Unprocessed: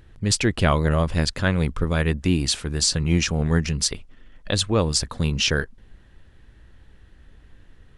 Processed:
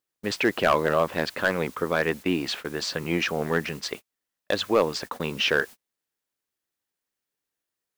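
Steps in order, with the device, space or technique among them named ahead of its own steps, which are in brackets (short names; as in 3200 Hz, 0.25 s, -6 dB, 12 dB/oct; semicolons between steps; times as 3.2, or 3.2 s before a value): aircraft radio (BPF 380–2400 Hz; hard clip -16 dBFS, distortion -14 dB; white noise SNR 22 dB; gate -39 dBFS, range -37 dB); gain +4 dB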